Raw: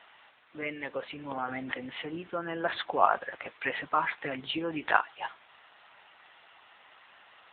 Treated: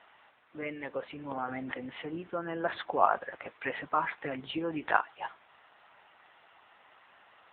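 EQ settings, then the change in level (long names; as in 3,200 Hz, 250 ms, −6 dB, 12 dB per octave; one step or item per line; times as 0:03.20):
high-shelf EQ 2,600 Hz −11 dB
0.0 dB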